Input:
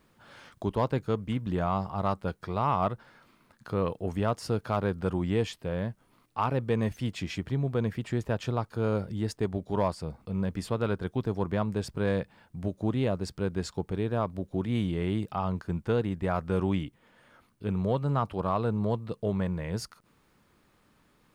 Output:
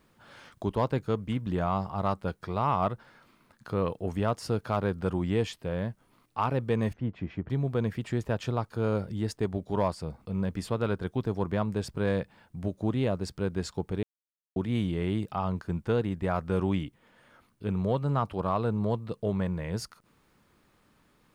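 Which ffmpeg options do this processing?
-filter_complex "[0:a]asettb=1/sr,asplit=3[s0][s1][s2];[s0]atrim=end=6.934[s3];[s1]atrim=start=6.93:end=7.5,asetpts=PTS-STARTPTS,afade=t=in:d=0.004:c=qsin,afade=t=out:st=0.566:d=0.004:c=qsin,lowpass=1300[s4];[s2]atrim=start=7.496[s5];[s3][s4]acrossfade=d=0.004:c1=hsin:c2=qsin[s6];[s6][s5]acrossfade=d=0.004:c1=qsin:c2=hsin,asplit=3[s7][s8][s9];[s7]atrim=end=14.03,asetpts=PTS-STARTPTS,afade=t=out:st=14.026:d=0.004:c=hsin[s10];[s8]atrim=start=14.03:end=14.56,asetpts=PTS-STARTPTS,volume=0[s11];[s9]atrim=start=14.56,asetpts=PTS-STARTPTS,afade=t=in:d=0.004:c=hsin[s12];[s10][s11][s12]concat=n=3:v=0:a=1"

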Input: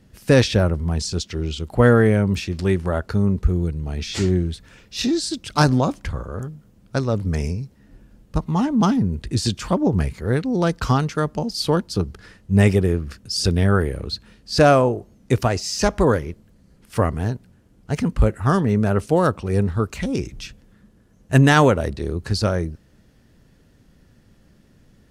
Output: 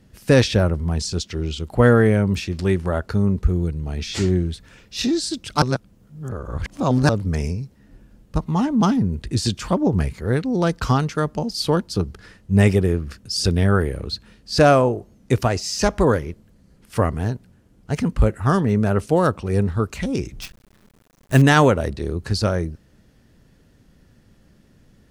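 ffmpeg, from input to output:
-filter_complex "[0:a]asettb=1/sr,asplit=3[s0][s1][s2];[s0]atrim=end=20.414[s3];[s1]atrim=start=20.41:end=21.42,asetpts=PTS-STARTPTS,afade=t=in:d=0.004:c=qsin,afade=t=out:st=1.006:d=0.004:c=qsin,acrusher=bits=6:dc=4:mix=0:aa=0.000001[s4];[s2]atrim=start=21.416[s5];[s3][s4]acrossfade=d=0.004:c1=hsin:c2=qsin[s6];[s6][s5]acrossfade=d=0.004:c1=qsin:c2=hsin,asplit=3[s7][s8][s9];[s7]atrim=end=5.622[s10];[s8]atrim=start=5.618:end=7.092,asetpts=PTS-STARTPTS,areverse[s11];[s9]atrim=start=7.088[s12];[s10][s11]acrossfade=d=0.004:c1=hsin:c2=hsin[s13];[s13][s12]acrossfade=d=0.004:c1=hsin:c2=hsin"

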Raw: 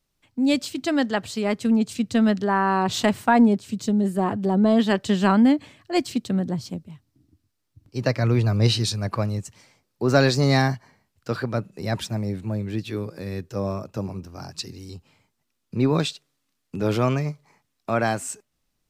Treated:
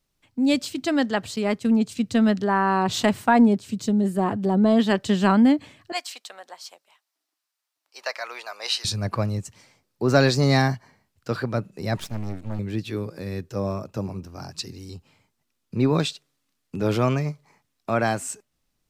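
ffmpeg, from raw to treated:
-filter_complex "[0:a]asettb=1/sr,asplit=3[s0][s1][s2];[s0]atrim=end=1.364[s3];[s1]atrim=start=1.36:end=1.97,asetpts=PTS-STARTPTS,afade=t=in:d=0.004:c=qsin,afade=t=out:st=0.606:d=0.004:c=qsin,agate=range=0.0224:threshold=0.02:ratio=3:release=100:detection=peak[s4];[s2]atrim=start=1.966[s5];[s3][s4]acrossfade=d=0.004:c1=hsin:c2=qsin[s6];[s6][s5]acrossfade=d=0.004:c1=qsin:c2=hsin,asettb=1/sr,asplit=3[s7][s8][s9];[s7]atrim=end=5.924[s10];[s8]atrim=start=5.92:end=8.85,asetpts=PTS-STARTPTS,afade=t=in:d=0.004:c=qsin,afade=t=out:st=2.926:d=0.004:c=qsin,highpass=f=720:w=0.5412,highpass=f=720:w=1.3066[s11];[s9]atrim=start=8.846[s12];[s10][s11]acrossfade=d=0.004:c1=hsin:c2=qsin[s13];[s13][s12]acrossfade=d=0.004:c1=qsin:c2=hsin,asettb=1/sr,asplit=3[s14][s15][s16];[s14]atrim=end=11.974[s17];[s15]atrim=start=11.97:end=12.59,asetpts=PTS-STARTPTS,afade=t=in:d=0.004:c=qsin,afade=t=out:st=0.616:d=0.004:c=qsin,aeval=exprs='max(val(0),0)':c=same[s18];[s16]atrim=start=12.586[s19];[s17][s18]acrossfade=d=0.004:c1=hsin:c2=qsin[s20];[s20][s19]acrossfade=d=0.004:c1=qsin:c2=hsin"

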